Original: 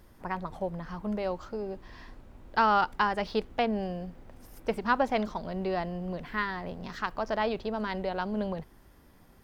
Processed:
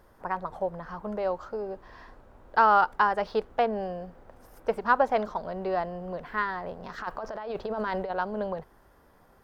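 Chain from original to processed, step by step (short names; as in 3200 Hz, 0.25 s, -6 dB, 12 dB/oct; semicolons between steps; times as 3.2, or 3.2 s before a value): band shelf 830 Hz +8.5 dB 2.3 oct; 6.98–8.11 negative-ratio compressor -28 dBFS, ratio -1; gain -4.5 dB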